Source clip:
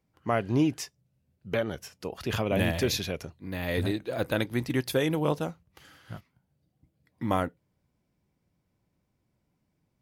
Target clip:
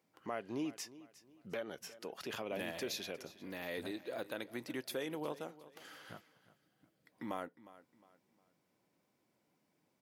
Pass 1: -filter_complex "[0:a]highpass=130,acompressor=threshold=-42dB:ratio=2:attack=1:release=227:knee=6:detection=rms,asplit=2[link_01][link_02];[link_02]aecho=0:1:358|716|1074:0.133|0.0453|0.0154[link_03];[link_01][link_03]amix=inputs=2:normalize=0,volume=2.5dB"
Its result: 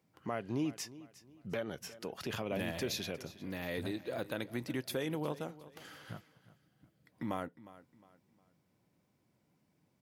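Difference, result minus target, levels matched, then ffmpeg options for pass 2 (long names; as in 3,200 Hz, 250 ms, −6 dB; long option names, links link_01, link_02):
125 Hz band +7.5 dB; downward compressor: peak gain reduction −3 dB
-filter_complex "[0:a]highpass=280,acompressor=threshold=-48.5dB:ratio=2:attack=1:release=227:knee=6:detection=rms,asplit=2[link_01][link_02];[link_02]aecho=0:1:358|716|1074:0.133|0.0453|0.0154[link_03];[link_01][link_03]amix=inputs=2:normalize=0,volume=2.5dB"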